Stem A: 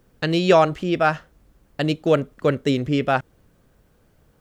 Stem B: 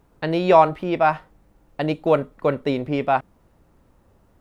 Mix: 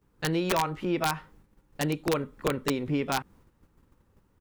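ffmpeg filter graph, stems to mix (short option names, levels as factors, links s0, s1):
-filter_complex "[0:a]volume=0.299[s0];[1:a]equalizer=f=650:t=o:w=0.42:g=-13,acompressor=threshold=0.0562:ratio=4,aeval=exprs='(mod(7.94*val(0)+1,2)-1)/7.94':c=same,volume=-1,adelay=16,volume=1,asplit=2[s1][s2];[s2]apad=whole_len=194178[s3];[s0][s3]sidechaincompress=threshold=0.0158:ratio=8:attack=16:release=171[s4];[s4][s1]amix=inputs=2:normalize=0,agate=range=0.398:threshold=0.00178:ratio=16:detection=peak"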